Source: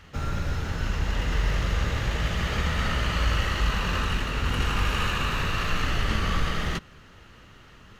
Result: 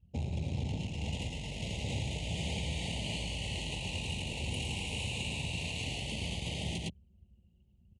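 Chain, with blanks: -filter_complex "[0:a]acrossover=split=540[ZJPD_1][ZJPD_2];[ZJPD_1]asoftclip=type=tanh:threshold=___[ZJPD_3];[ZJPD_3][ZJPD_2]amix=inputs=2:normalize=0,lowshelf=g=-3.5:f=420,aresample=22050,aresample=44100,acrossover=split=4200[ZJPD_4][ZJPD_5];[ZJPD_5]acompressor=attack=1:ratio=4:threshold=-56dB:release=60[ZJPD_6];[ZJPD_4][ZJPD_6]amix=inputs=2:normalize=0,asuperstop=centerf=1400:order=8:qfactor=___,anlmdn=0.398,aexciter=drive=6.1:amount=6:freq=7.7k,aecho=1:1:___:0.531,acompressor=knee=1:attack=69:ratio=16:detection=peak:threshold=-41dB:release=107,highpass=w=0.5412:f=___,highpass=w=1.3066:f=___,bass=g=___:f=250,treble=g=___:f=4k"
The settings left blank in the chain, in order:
-31.5dB, 1, 109, 71, 71, 10, 9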